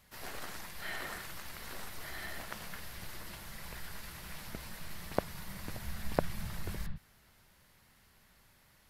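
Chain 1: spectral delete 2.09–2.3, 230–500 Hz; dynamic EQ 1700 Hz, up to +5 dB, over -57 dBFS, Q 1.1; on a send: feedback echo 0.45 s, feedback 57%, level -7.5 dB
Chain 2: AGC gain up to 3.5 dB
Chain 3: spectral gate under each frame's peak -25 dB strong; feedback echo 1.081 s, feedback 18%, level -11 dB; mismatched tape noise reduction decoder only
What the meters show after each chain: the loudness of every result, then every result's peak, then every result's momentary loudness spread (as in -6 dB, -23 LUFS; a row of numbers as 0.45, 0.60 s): -40.0, -39.5, -44.5 LUFS; -8.5, -6.0, -9.5 dBFS; 15, 9, 16 LU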